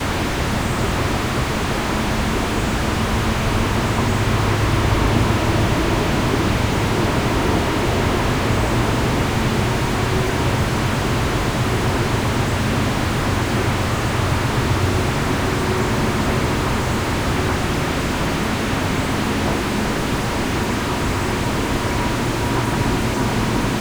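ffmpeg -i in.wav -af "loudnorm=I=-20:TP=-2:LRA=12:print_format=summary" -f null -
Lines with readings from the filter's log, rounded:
Input Integrated:    -19.6 LUFS
Input True Peak:      -4.4 dBTP
Input LRA:             2.1 LU
Input Threshold:     -29.6 LUFS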